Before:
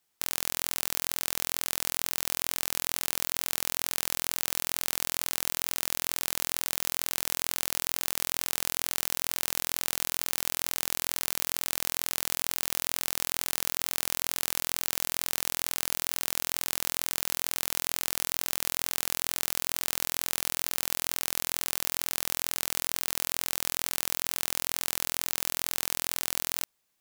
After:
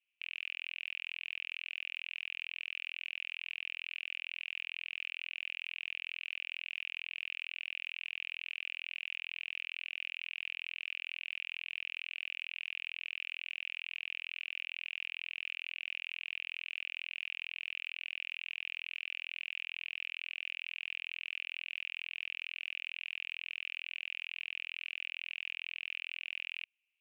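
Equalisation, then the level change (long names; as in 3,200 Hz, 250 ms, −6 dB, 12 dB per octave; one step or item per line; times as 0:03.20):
flat-topped band-pass 2,600 Hz, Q 4.7
high-frequency loss of the air 210 metres
+8.5 dB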